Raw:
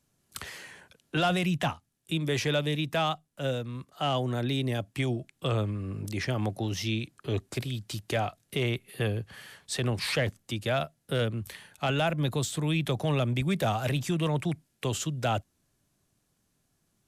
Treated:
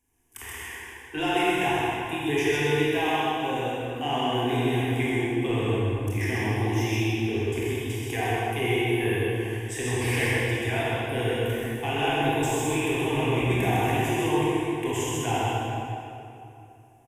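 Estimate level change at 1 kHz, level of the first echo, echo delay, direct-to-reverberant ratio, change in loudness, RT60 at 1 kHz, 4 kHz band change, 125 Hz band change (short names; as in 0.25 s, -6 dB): +6.5 dB, -2.5 dB, 0.129 s, -8.5 dB, +4.0 dB, 2.7 s, +1.5 dB, +1.5 dB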